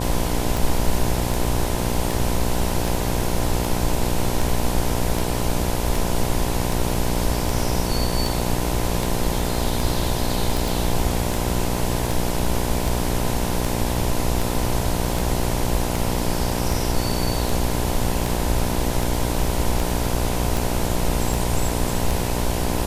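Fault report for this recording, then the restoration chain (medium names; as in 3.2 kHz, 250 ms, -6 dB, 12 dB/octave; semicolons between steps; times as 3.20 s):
buzz 60 Hz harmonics 17 -25 dBFS
tick 78 rpm
10.68 s: pop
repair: de-click; de-hum 60 Hz, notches 17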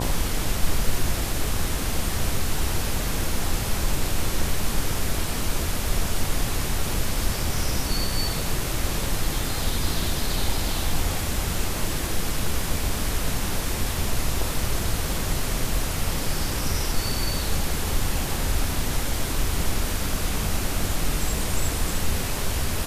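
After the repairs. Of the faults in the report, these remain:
nothing left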